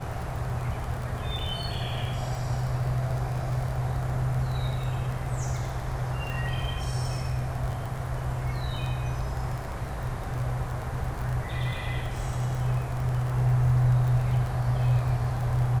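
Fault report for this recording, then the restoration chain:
crackle 21 per s -31 dBFS
6.30 s: pop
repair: de-click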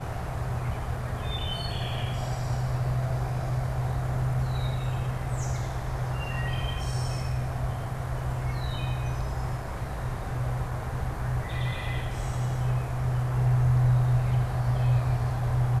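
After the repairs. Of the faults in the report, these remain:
nothing left

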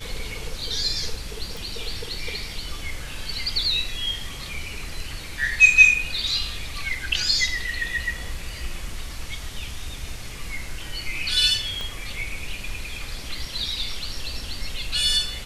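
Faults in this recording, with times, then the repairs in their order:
1.57 s: pop
11.81 s: pop -18 dBFS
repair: de-click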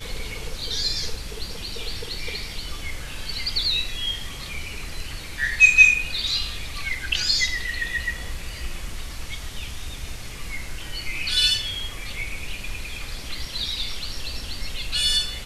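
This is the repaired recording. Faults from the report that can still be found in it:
11.81 s: pop

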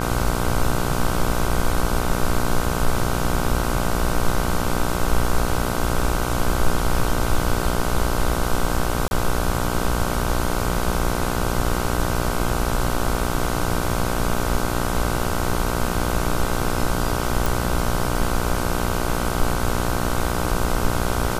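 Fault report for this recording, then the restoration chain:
buzz 60 Hz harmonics 26 -25 dBFS
9.08–9.11 s: dropout 31 ms
17.46 s: pop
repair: de-click; de-hum 60 Hz, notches 26; interpolate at 9.08 s, 31 ms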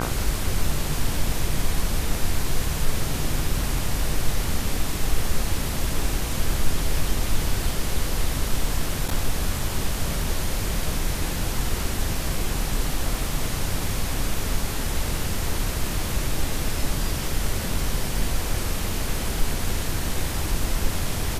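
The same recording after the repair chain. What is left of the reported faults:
nothing left

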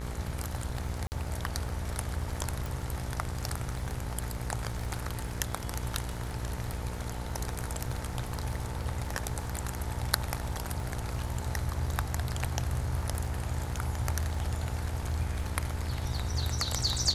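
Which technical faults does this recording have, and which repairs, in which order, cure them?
buzz 60 Hz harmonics 38 -38 dBFS
crackle 33 per s -40 dBFS
1.07–1.12 s: dropout 49 ms
2.66 s: pop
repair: de-click; de-hum 60 Hz, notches 38; interpolate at 1.07 s, 49 ms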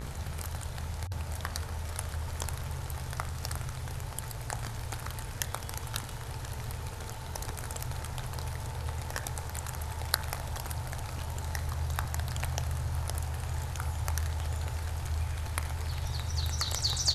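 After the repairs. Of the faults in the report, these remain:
nothing left

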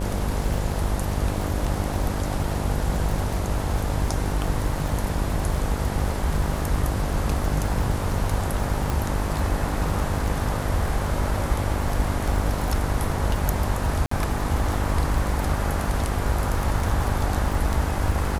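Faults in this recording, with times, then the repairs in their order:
buzz 50 Hz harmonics 19 -28 dBFS
crackle 54 per s -28 dBFS
8.90 s: pop
14.06–14.11 s: dropout 54 ms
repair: de-click; de-hum 50 Hz, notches 19; interpolate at 14.06 s, 54 ms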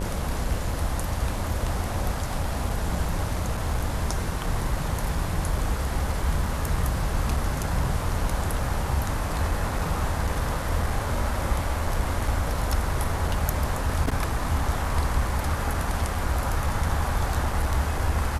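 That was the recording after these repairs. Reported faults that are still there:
nothing left

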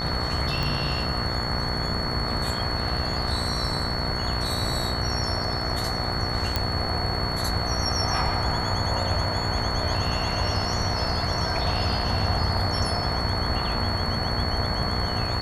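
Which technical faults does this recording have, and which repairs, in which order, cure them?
buzz 60 Hz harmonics 35 -31 dBFS
whine 4.4 kHz -30 dBFS
0.63 s: pop
6.56 s: pop -9 dBFS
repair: de-click; de-hum 60 Hz, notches 35; band-stop 4.4 kHz, Q 30

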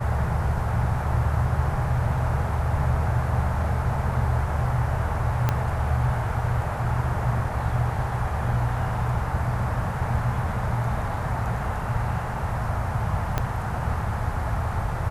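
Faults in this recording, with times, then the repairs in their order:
5.49 s: pop -9 dBFS
13.38 s: pop -10 dBFS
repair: de-click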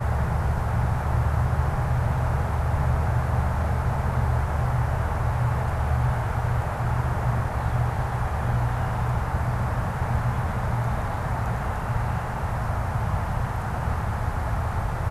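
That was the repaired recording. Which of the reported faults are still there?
5.49 s: pop
13.38 s: pop

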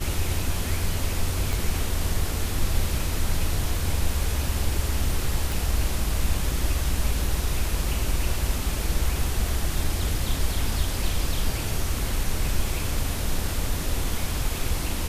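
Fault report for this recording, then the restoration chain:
1.53 s: pop
5.52 s: pop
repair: de-click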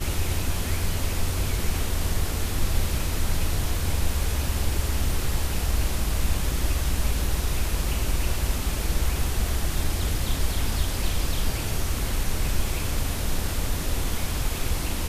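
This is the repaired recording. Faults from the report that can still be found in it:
1.53 s: pop

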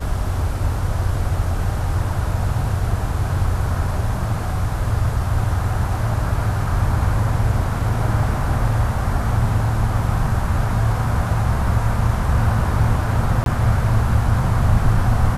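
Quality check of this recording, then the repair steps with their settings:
13.44–13.46 s: dropout 22 ms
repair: interpolate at 13.44 s, 22 ms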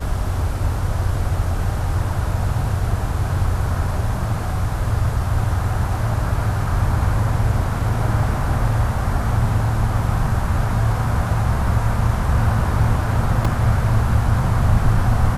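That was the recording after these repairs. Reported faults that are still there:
nothing left

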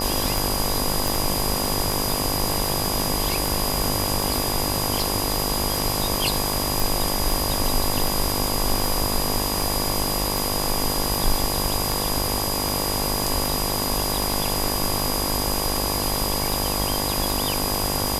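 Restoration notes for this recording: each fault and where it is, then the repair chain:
buzz 50 Hz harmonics 23 -28 dBFS
tick 78 rpm
whine 4.9 kHz -29 dBFS
1.08 s: pop
6.80 s: pop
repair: de-click; band-stop 4.9 kHz, Q 30; de-hum 50 Hz, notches 23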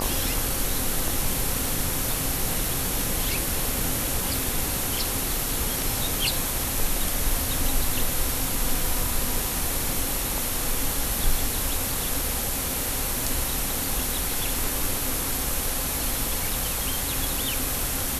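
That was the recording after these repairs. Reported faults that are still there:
nothing left

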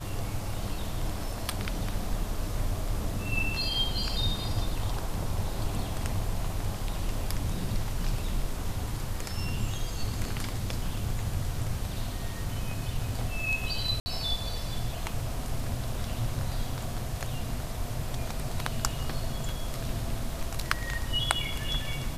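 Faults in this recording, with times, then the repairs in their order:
14.00–14.06 s: dropout 60 ms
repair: interpolate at 14.00 s, 60 ms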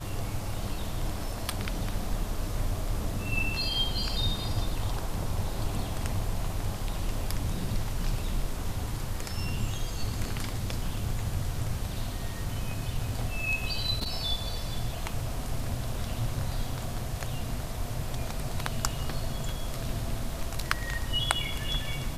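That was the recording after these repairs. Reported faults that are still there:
nothing left

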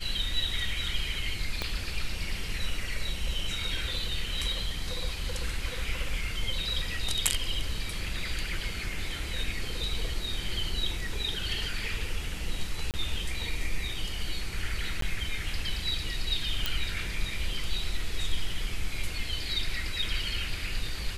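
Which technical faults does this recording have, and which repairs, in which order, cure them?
1.62 s: pop -15 dBFS
12.91–12.94 s: dropout 28 ms
15.01–15.02 s: dropout 13 ms
16.66 s: pop -12 dBFS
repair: de-click; interpolate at 12.91 s, 28 ms; interpolate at 15.01 s, 13 ms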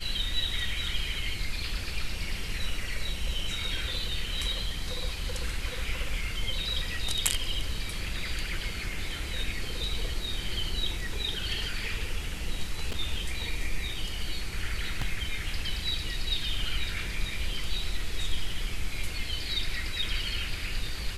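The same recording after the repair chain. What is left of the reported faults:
1.62 s: pop

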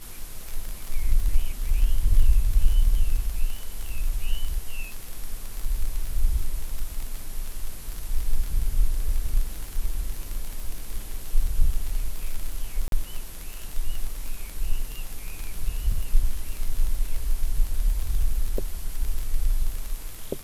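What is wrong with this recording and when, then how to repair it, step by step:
crackle 32 per s -27 dBFS
12.88–12.92 s: dropout 42 ms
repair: de-click; interpolate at 12.88 s, 42 ms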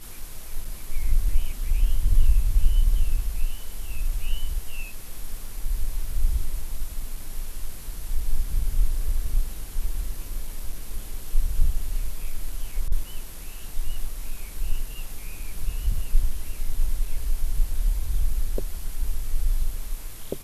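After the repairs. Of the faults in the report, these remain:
nothing left

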